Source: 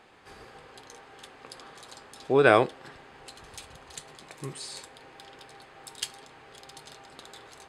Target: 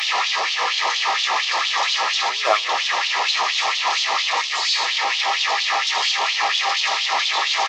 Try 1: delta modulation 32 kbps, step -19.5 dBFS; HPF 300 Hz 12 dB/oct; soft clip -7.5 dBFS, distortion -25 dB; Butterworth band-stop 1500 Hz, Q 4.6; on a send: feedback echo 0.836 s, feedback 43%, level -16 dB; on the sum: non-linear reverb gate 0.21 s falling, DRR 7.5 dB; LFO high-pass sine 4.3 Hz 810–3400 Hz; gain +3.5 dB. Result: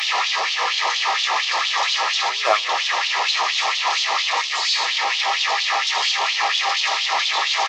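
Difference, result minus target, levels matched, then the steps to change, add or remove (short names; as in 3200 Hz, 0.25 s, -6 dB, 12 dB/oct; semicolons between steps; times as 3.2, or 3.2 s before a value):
125 Hz band -8.5 dB
change: HPF 140 Hz 12 dB/oct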